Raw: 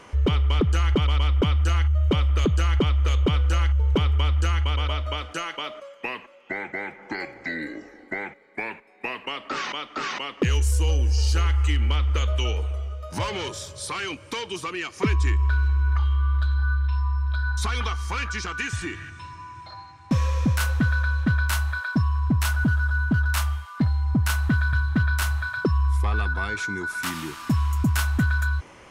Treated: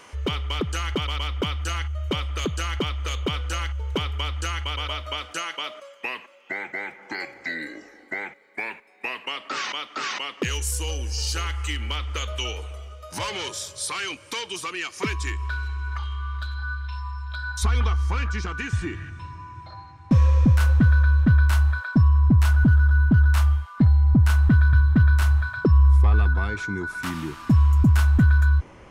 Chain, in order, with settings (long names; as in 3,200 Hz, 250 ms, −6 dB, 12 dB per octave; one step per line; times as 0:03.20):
spectral tilt +2 dB per octave, from 0:17.62 −2 dB per octave
level −1 dB